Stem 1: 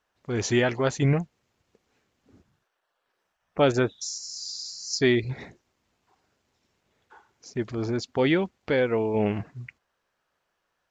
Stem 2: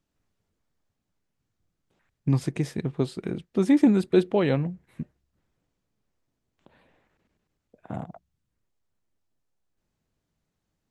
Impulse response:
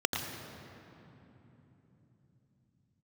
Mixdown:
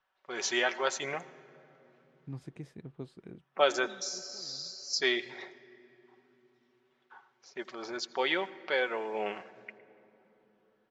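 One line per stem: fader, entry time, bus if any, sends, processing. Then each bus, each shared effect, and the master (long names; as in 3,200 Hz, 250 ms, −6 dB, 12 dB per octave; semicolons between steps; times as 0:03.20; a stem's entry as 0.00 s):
−1.0 dB, 0.00 s, send −22.5 dB, low-pass that shuts in the quiet parts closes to 3,000 Hz, open at −18.5 dBFS; high-pass filter 780 Hz 12 dB per octave; comb filter 5.3 ms, depth 43%
−17.0 dB, 0.00 s, no send, high-shelf EQ 4,700 Hz −7.5 dB; automatic ducking −17 dB, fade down 0.20 s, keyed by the first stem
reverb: on, RT60 3.4 s, pre-delay 82 ms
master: no processing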